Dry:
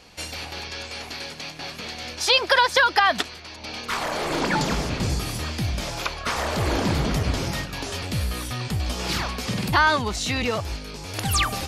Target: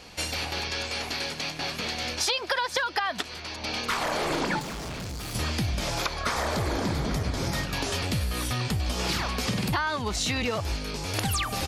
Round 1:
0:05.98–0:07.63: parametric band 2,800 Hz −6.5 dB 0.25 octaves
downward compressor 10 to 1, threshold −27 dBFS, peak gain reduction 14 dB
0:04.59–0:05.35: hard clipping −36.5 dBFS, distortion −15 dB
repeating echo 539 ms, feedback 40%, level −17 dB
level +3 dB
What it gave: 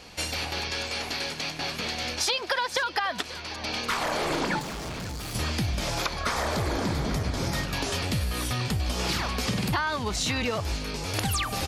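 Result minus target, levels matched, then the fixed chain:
echo-to-direct +10.5 dB
0:05.98–0:07.63: parametric band 2,800 Hz −6.5 dB 0.25 octaves
downward compressor 10 to 1, threshold −27 dBFS, peak gain reduction 14 dB
0:04.59–0:05.35: hard clipping −36.5 dBFS, distortion −15 dB
repeating echo 539 ms, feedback 40%, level −27.5 dB
level +3 dB

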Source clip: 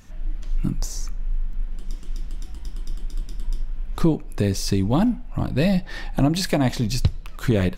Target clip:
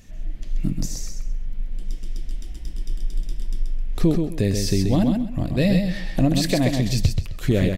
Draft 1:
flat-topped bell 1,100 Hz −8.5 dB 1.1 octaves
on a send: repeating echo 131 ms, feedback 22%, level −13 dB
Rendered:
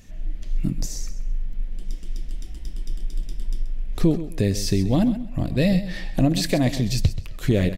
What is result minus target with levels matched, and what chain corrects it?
echo-to-direct −8 dB
flat-topped bell 1,100 Hz −8.5 dB 1.1 octaves
on a send: repeating echo 131 ms, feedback 22%, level −5 dB

